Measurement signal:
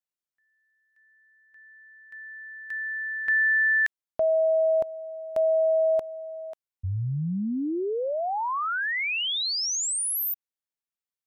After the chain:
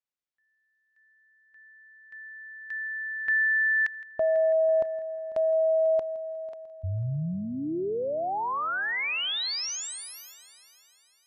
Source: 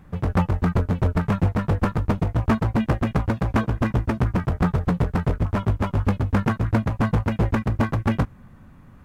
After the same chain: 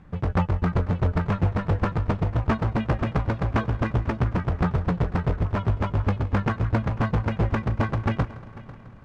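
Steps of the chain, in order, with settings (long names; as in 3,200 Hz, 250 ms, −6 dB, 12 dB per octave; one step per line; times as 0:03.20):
low-pass filter 5,500 Hz 12 dB per octave
dynamic equaliser 230 Hz, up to −4 dB, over −33 dBFS, Q 2.2
echo machine with several playback heads 165 ms, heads first and third, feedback 50%, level −19 dB
level −1.5 dB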